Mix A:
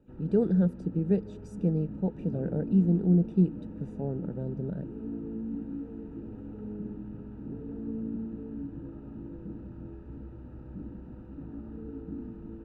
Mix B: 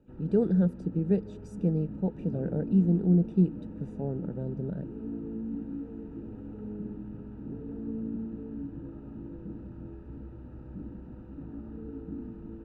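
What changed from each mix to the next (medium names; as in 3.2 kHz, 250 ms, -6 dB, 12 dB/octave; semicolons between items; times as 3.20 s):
no change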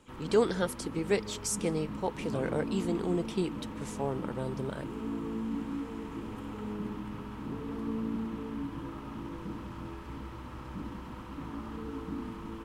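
speech: add peaking EQ 180 Hz -14.5 dB 0.52 oct; master: remove boxcar filter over 41 samples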